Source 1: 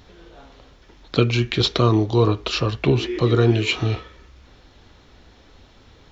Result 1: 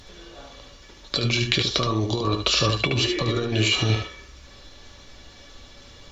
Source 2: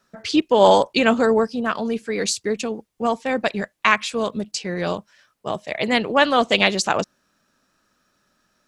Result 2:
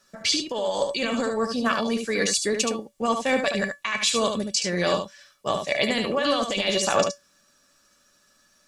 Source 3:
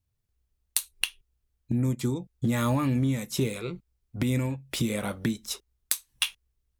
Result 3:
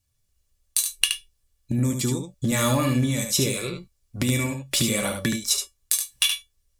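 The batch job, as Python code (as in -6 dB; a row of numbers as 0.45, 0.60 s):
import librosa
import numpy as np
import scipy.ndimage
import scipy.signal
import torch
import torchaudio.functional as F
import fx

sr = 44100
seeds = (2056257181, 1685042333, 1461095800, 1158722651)

y = fx.peak_eq(x, sr, hz=7600.0, db=9.5, octaves=2.3)
y = fx.over_compress(y, sr, threshold_db=-20.0, ratio=-1.0)
y = fx.comb_fb(y, sr, f0_hz=570.0, decay_s=0.16, harmonics='all', damping=0.0, mix_pct=80)
y = y + 10.0 ** (-6.0 / 20.0) * np.pad(y, (int(73 * sr / 1000.0), 0))[:len(y)]
y = y * 10.0 ** (-26 / 20.0) / np.sqrt(np.mean(np.square(y)))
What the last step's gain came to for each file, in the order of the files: +9.0, +7.5, +13.5 dB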